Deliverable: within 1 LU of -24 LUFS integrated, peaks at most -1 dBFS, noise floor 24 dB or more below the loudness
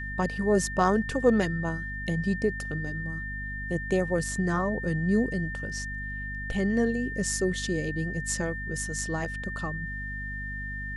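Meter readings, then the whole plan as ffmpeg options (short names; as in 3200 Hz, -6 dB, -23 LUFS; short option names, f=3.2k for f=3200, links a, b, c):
hum 50 Hz; harmonics up to 250 Hz; hum level -35 dBFS; steady tone 1800 Hz; tone level -35 dBFS; loudness -29.0 LUFS; peak -9.5 dBFS; loudness target -24.0 LUFS
-> -af "bandreject=f=50:t=h:w=4,bandreject=f=100:t=h:w=4,bandreject=f=150:t=h:w=4,bandreject=f=200:t=h:w=4,bandreject=f=250:t=h:w=4"
-af "bandreject=f=1.8k:w=30"
-af "volume=5dB"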